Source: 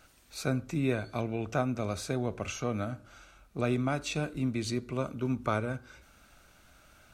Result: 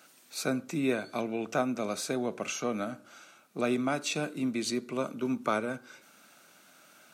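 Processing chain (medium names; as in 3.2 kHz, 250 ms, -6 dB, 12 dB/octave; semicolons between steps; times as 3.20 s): high-pass 180 Hz 24 dB/octave; treble shelf 5.2 kHz +5 dB; trim +1.5 dB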